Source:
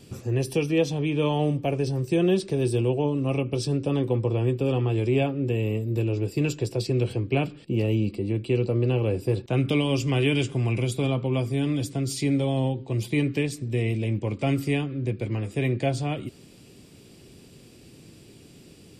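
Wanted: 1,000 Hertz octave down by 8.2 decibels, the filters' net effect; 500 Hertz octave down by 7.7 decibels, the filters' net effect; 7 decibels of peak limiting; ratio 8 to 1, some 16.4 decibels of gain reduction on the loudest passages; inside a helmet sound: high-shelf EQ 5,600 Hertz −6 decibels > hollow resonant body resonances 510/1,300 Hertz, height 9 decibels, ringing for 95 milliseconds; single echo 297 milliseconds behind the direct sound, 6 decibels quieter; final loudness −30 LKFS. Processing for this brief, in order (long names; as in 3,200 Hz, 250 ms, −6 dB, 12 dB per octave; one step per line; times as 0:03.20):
parametric band 500 Hz −9 dB
parametric band 1,000 Hz −7 dB
downward compressor 8 to 1, threshold −39 dBFS
brickwall limiter −36 dBFS
high-shelf EQ 5,600 Hz −6 dB
single-tap delay 297 ms −6 dB
hollow resonant body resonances 510/1,300 Hz, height 9 dB, ringing for 95 ms
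level +14 dB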